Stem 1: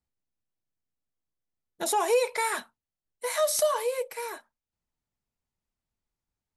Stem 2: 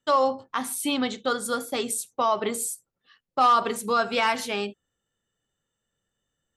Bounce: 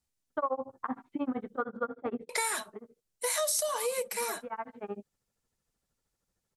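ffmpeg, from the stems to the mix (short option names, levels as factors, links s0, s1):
-filter_complex "[0:a]equalizer=f=8000:t=o:w=2.1:g=9,volume=1.12,asplit=3[s0][s1][s2];[s0]atrim=end=1.61,asetpts=PTS-STARTPTS,afade=t=out:st=1.606:d=0.004:c=hsin[s3];[s1]atrim=start=1.61:end=2.29,asetpts=PTS-STARTPTS,volume=0[s4];[s2]atrim=start=2.29,asetpts=PTS-STARTPTS,afade=t=in:d=0.004:c=hsin[s5];[s3][s4][s5]concat=n=3:v=0:a=1,asplit=2[s6][s7];[1:a]lowpass=f=1500:w=0.5412,lowpass=f=1500:w=1.3066,tremolo=f=13:d=0.99,adelay=300,volume=1.12[s8];[s7]apad=whole_len=302674[s9];[s8][s9]sidechaincompress=threshold=0.0141:ratio=10:attack=6.4:release=1120[s10];[s6][s10]amix=inputs=2:normalize=0,acompressor=threshold=0.0398:ratio=5"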